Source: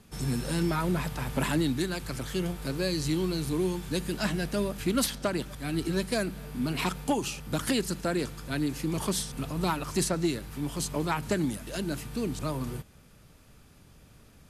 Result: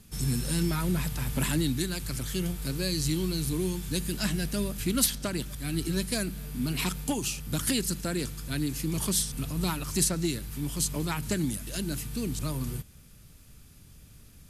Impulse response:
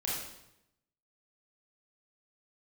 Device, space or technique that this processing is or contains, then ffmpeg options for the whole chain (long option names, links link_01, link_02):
smiley-face EQ: -af "lowshelf=frequency=120:gain=4,equalizer=frequency=730:width_type=o:width=2.5:gain=-8.5,highshelf=frequency=7400:gain=8,volume=1.5dB"